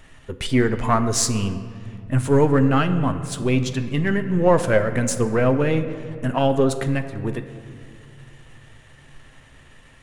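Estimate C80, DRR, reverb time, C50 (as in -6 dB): 12.0 dB, 7.5 dB, 2.3 s, 11.0 dB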